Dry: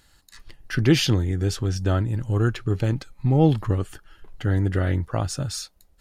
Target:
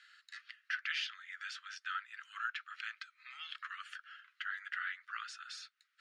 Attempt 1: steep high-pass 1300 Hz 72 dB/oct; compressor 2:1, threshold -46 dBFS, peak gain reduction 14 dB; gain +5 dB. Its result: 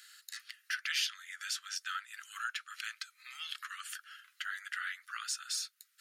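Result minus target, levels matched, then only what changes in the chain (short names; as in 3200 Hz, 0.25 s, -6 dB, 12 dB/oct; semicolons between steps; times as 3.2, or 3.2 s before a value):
2000 Hz band -2.5 dB
add after compressor: LPF 2700 Hz 12 dB/oct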